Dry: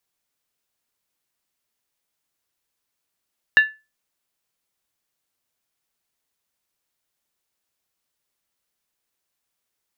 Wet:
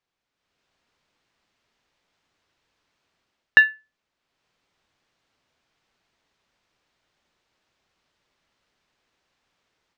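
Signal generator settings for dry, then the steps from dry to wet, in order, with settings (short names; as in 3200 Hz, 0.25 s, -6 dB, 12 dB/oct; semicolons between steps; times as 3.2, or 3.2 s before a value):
skin hit, lowest mode 1740 Hz, decay 0.26 s, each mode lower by 11 dB, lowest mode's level -6 dB
AGC gain up to 11 dB; in parallel at -11.5 dB: soft clip -9.5 dBFS; on the sum: air absorption 160 m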